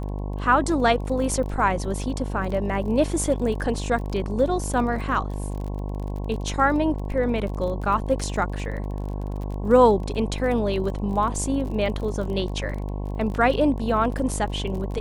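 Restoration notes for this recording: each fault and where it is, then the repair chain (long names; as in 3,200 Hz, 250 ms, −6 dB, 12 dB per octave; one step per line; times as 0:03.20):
mains buzz 50 Hz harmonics 22 −29 dBFS
surface crackle 30 per second −32 dBFS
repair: click removal
hum removal 50 Hz, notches 22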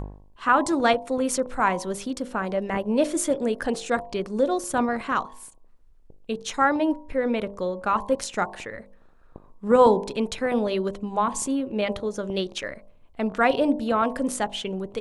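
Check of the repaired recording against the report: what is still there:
none of them is left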